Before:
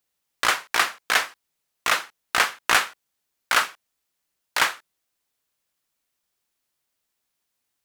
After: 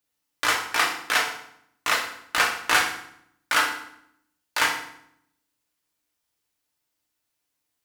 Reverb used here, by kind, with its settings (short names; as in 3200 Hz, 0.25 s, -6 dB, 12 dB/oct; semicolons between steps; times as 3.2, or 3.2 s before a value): FDN reverb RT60 0.7 s, low-frequency decay 1.45×, high-frequency decay 0.85×, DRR 0 dB; gain -3.5 dB